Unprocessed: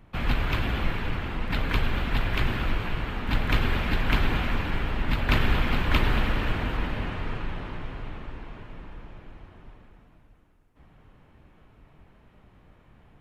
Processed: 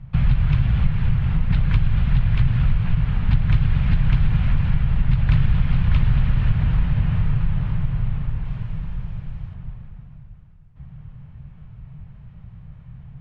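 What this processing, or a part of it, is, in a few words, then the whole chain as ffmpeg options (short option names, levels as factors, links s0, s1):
jukebox: -filter_complex "[0:a]asettb=1/sr,asplit=3[s0][s1][s2];[s0]atrim=end=8.454[s3];[s1]atrim=start=8.45:end=9.54,asetpts=PTS-STARTPTS,afade=t=in:d=0.004:c=qsin,afade=t=out:st=1.086:d=0.004:c=qsin,aemphasis=mode=production:type=50kf[s4];[s2]atrim=start=9.536[s5];[s3][s4]acrossfade=d=0.004:c1=hsin:c2=qsin[s6];[s6][s5]acrossfade=d=0.004:c1=qsin:c2=hsin,lowpass=5000,lowshelf=f=210:t=q:w=3:g=13.5,acompressor=threshold=0.178:ratio=3"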